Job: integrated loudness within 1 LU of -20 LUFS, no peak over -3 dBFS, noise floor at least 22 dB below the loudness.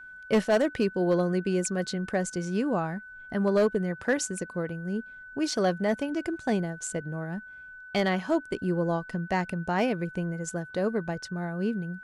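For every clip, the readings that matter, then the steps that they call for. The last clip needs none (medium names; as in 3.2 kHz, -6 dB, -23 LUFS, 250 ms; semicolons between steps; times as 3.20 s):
clipped samples 0.4%; clipping level -17.0 dBFS; steady tone 1.5 kHz; tone level -43 dBFS; loudness -29.0 LUFS; peak level -17.0 dBFS; loudness target -20.0 LUFS
-> clip repair -17 dBFS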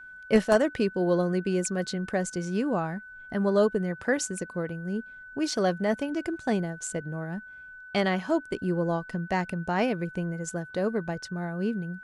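clipped samples 0.0%; steady tone 1.5 kHz; tone level -43 dBFS
-> band-stop 1.5 kHz, Q 30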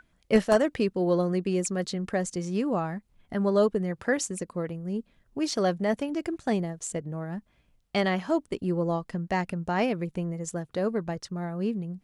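steady tone not found; loudness -28.5 LUFS; peak level -8.5 dBFS; loudness target -20.0 LUFS
-> trim +8.5 dB; peak limiter -3 dBFS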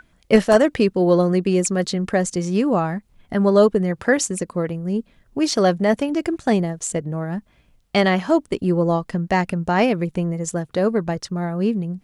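loudness -20.5 LUFS; peak level -3.0 dBFS; noise floor -59 dBFS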